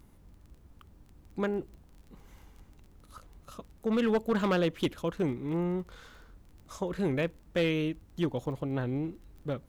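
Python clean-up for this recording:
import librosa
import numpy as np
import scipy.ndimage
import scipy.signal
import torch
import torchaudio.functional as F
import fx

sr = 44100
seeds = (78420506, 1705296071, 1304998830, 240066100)

y = fx.fix_declip(x, sr, threshold_db=-21.5)
y = fx.fix_declick_ar(y, sr, threshold=6.5)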